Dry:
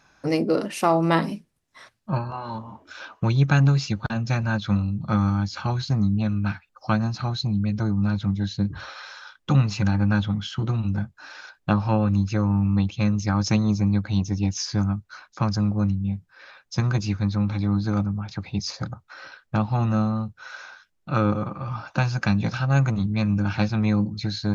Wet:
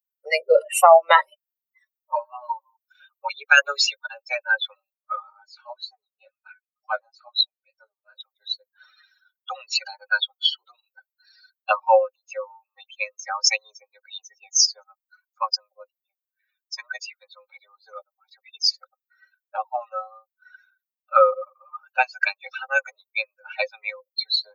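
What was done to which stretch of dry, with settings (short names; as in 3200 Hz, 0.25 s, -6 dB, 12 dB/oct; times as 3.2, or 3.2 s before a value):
3.57–3.99 comb 7.1 ms, depth 95%
4.94–8.18 chorus 2.1 Hz, delay 17.5 ms, depth 7.2 ms
9.75–11.76 bell 4500 Hz +11 dB 0.3 oct
whole clip: per-bin expansion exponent 3; steep high-pass 510 Hz 96 dB/oct; maximiser +18.5 dB; gain -1 dB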